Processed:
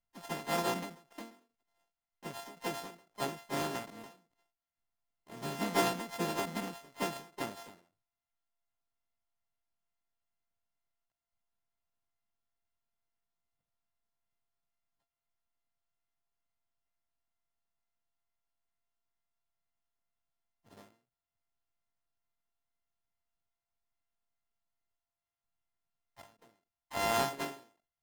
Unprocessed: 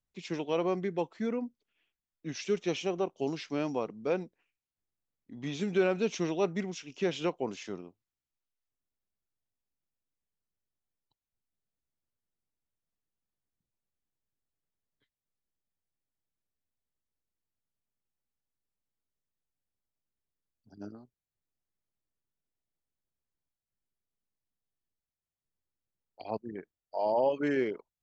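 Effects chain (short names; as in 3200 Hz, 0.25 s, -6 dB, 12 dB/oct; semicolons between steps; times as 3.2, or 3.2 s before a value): sample sorter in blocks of 64 samples; harmoniser +3 st -10 dB, +5 st -9 dB, +7 st -7 dB; ending taper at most 130 dB/s; gain -4 dB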